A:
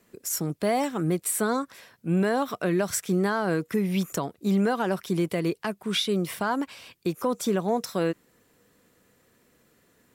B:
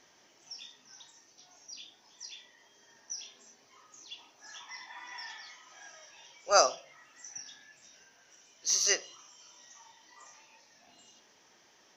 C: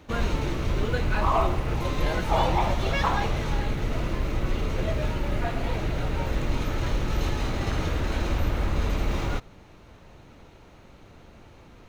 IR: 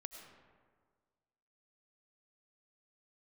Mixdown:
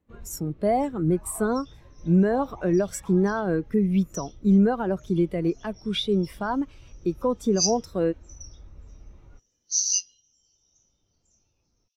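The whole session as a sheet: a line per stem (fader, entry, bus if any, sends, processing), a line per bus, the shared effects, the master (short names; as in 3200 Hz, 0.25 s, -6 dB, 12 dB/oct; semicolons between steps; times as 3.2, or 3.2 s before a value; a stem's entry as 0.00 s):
-0.5 dB, 0.00 s, no send, dry
-4.0 dB, 1.05 s, no send, steep high-pass 2600 Hz 48 dB/oct; high shelf 3900 Hz +12 dB
-8.5 dB, 0.00 s, no send, auto duck -8 dB, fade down 0.30 s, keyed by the first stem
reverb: off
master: spectral expander 1.5:1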